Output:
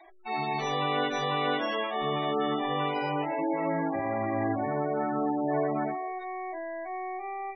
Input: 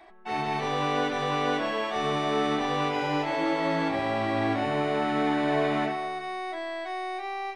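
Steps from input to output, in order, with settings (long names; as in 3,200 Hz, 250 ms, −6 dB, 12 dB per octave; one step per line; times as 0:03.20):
high-shelf EQ 3,600 Hz +9.5 dB, from 0:01.83 +3 dB, from 0:03.25 −6 dB
gate on every frequency bin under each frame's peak −15 dB strong
mains-hum notches 60/120/180/240/300/360/420/480/540/600 Hz
level −1.5 dB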